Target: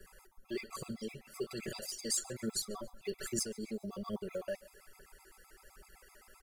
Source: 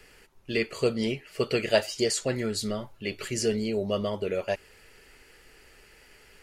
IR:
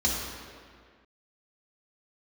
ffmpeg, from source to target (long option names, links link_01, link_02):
-filter_complex "[0:a]highshelf=frequency=1800:width_type=q:width=1.5:gain=-13.5,aecho=1:1:5.3:0.64,acrossover=split=450|1900[link_01][link_02][link_03];[link_02]acompressor=threshold=-39dB:ratio=6[link_04];[link_01][link_04][link_03]amix=inputs=3:normalize=0,alimiter=level_in=2dB:limit=-24dB:level=0:latency=1:release=27,volume=-2dB,asplit=2[link_05][link_06];[link_06]aecho=0:1:139|278|417:0.0708|0.0347|0.017[link_07];[link_05][link_07]amix=inputs=2:normalize=0,aphaser=in_gain=1:out_gain=1:delay=4.2:decay=0.52:speed=1.2:type=triangular,crystalizer=i=8:c=0,afftfilt=real='re*gt(sin(2*PI*7.8*pts/sr)*(1-2*mod(floor(b*sr/1024/670),2)),0)':imag='im*gt(sin(2*PI*7.8*pts/sr)*(1-2*mod(floor(b*sr/1024/670),2)),0)':win_size=1024:overlap=0.75,volume=-6.5dB"